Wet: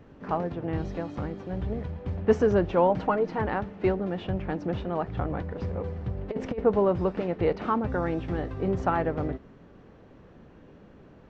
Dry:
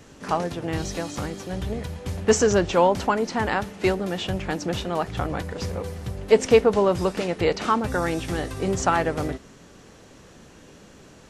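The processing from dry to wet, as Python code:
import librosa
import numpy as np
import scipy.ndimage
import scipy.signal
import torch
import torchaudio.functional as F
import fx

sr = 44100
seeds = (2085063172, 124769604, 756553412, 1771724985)

y = fx.quant_dither(x, sr, seeds[0], bits=8, dither='triangular', at=(1.45, 1.9), fade=0.02)
y = fx.comb(y, sr, ms=6.4, depth=0.7, at=(2.89, 3.42))
y = fx.over_compress(y, sr, threshold_db=-19.0, ratio=-0.5, at=(5.78, 6.58), fade=0.02)
y = fx.spacing_loss(y, sr, db_at_10k=42)
y = y * 10.0 ** (-1.0 / 20.0)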